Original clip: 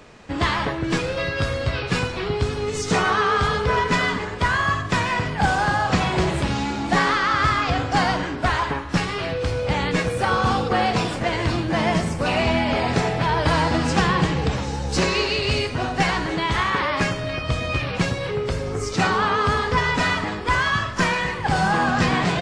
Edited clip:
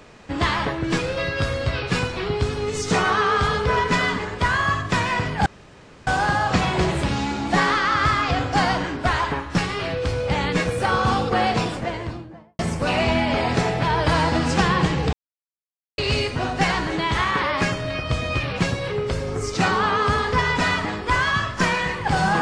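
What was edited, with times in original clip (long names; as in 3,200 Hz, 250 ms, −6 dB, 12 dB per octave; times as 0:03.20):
0:05.46: splice in room tone 0.61 s
0:10.86–0:11.98: fade out and dull
0:14.52–0:15.37: silence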